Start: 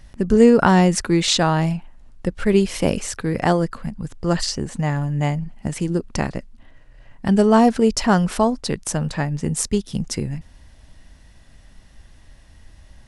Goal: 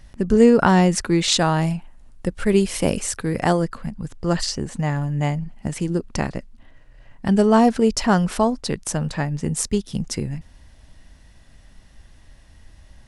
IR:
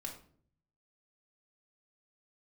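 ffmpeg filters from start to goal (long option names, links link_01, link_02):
-filter_complex "[0:a]asettb=1/sr,asplit=3[link_01][link_02][link_03];[link_01]atrim=end=1.324[link_04];[link_02]atrim=start=1.32:end=3.62,asetpts=PTS-STARTPTS,afade=type=in:duration=0.004:curve=qsin,afade=type=out:start_time=2.296:duration=0.004:curve=qsin,equalizer=frequency=9600:width_type=o:width=0.8:gain=6.5[link_05];[link_03]atrim=start=3.616[link_06];[link_04][link_05]acrossfade=duration=0.004:curve1=hsin:curve2=qsin[link_07];[link_07][link_06]acrossfade=duration=0.004:curve1=qsin:curve2=hsin,volume=-1dB"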